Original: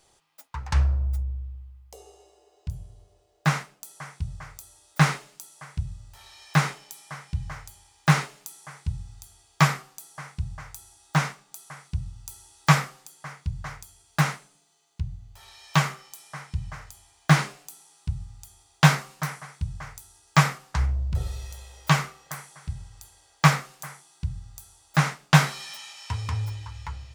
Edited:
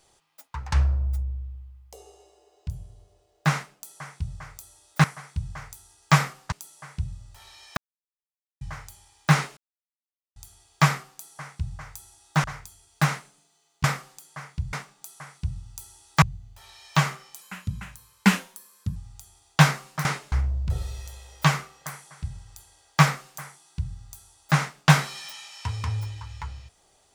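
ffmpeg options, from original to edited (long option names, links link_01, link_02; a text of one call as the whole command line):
ffmpeg -i in.wav -filter_complex "[0:a]asplit=15[link_01][link_02][link_03][link_04][link_05][link_06][link_07][link_08][link_09][link_10][link_11][link_12][link_13][link_14][link_15];[link_01]atrim=end=5.042[link_16];[link_02]atrim=start=19.288:end=20.772[link_17];[link_03]atrim=start=5.308:end=6.56,asetpts=PTS-STARTPTS,afade=type=out:start_time=1.248:duration=0.004:curve=hsin[link_18];[link_04]atrim=start=6.56:end=7.4,asetpts=PTS-STARTPTS,volume=0[link_19];[link_05]atrim=start=7.4:end=8.36,asetpts=PTS-STARTPTS,afade=type=in:duration=0.004:curve=hsin,afade=type=out:start_time=0.956:duration=0.004:curve=hsin[link_20];[link_06]atrim=start=8.36:end=9.15,asetpts=PTS-STARTPTS,volume=0[link_21];[link_07]atrim=start=9.15:end=11.232,asetpts=PTS-STARTPTS,afade=type=in:duration=0.004:curve=hsin[link_22];[link_08]atrim=start=13.608:end=15.012[link_23];[link_09]atrim=start=12.718:end=13.612[link_24];[link_10]atrim=start=11.228:end=12.722[link_25];[link_11]atrim=start=15.008:end=16.204[link_26];[link_12]atrim=start=16.2:end=18.2,asetpts=PTS-STARTPTS,asetrate=56889,aresample=44100,atrim=end_sample=68372,asetpts=PTS-STARTPTS[link_27];[link_13]atrim=start=18.196:end=19.292[link_28];[link_14]atrim=start=5.038:end=5.312[link_29];[link_15]atrim=start=20.768[link_30];[link_16][link_17]acrossfade=duration=0.004:curve1=hsin:curve2=hsin[link_31];[link_18][link_19][link_20][link_21][link_22]concat=n=5:v=0:a=1[link_32];[link_31][link_32]acrossfade=duration=0.004:curve1=hsin:curve2=hsin[link_33];[link_33][link_23]acrossfade=duration=0.004:curve1=hsin:curve2=hsin[link_34];[link_34][link_24]acrossfade=duration=0.004:curve1=hsin:curve2=hsin[link_35];[link_35][link_25]acrossfade=duration=0.004:curve1=hsin:curve2=hsin[link_36];[link_36][link_26]acrossfade=duration=0.004:curve1=hsin:curve2=hsin[link_37];[link_37][link_27]acrossfade=duration=0.004:curve1=hsin:curve2=hsin[link_38];[link_38][link_28]acrossfade=duration=0.004:curve1=hsin:curve2=hsin[link_39];[link_39][link_29]acrossfade=duration=0.004:curve1=hsin:curve2=hsin[link_40];[link_40][link_30]acrossfade=duration=0.004:curve1=hsin:curve2=hsin" out.wav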